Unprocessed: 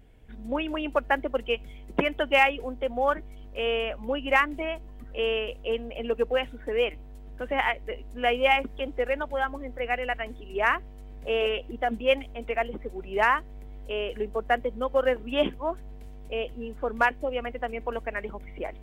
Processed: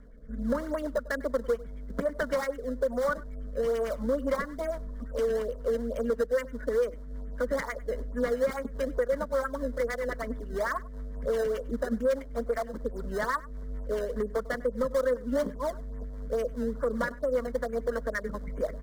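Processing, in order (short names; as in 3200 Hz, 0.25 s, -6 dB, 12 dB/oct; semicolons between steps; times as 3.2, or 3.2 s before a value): LFO low-pass sine 9.1 Hz 680–2500 Hz; in parallel at -8 dB: decimation with a swept rate 22×, swing 160% 2.3 Hz; on the sum: rotary speaker horn 1.2 Hz, later 5 Hz, at 3.76; compressor 3:1, threshold -31 dBFS, peak gain reduction 14.5 dB; on a send: echo 99 ms -21.5 dB; on the sum: hard clip -26.5 dBFS, distortion -16 dB; high shelf 5100 Hz -6 dB; fixed phaser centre 520 Hz, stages 8; gain +6.5 dB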